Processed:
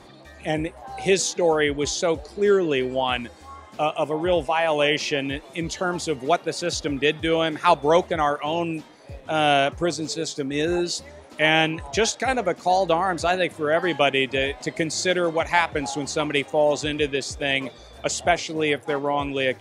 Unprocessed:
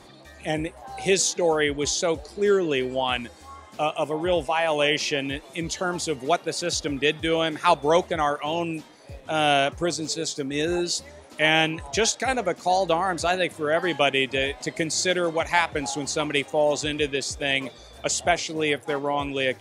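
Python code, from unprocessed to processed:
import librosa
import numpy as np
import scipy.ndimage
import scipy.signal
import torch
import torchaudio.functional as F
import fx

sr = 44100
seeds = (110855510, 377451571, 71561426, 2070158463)

y = fx.high_shelf(x, sr, hz=4400.0, db=-6.0)
y = y * librosa.db_to_amplitude(2.0)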